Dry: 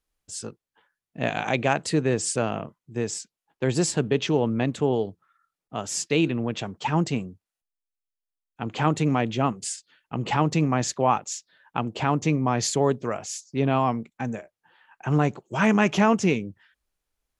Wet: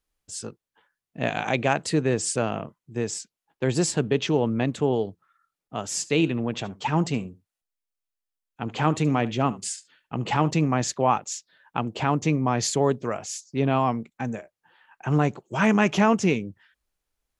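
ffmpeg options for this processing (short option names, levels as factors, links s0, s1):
-filter_complex "[0:a]asettb=1/sr,asplit=3[s0][s1][s2];[s0]atrim=end=5.914[s3];[s1]atrim=start=5.91:end=10.51,asetpts=PTS-STARTPTS,afade=t=in:d=0.004:c=qsin,afade=t=out:st=4.596:d=0.004:c=qsin,aecho=1:1:73:0.112,atrim=end_sample=202860[s4];[s2]atrim=start=10.506[s5];[s3][s4]acrossfade=d=0.004:c1=hsin:c2=qsin[s6];[s6][s5]acrossfade=d=0.004:c1=qsin:c2=hsin"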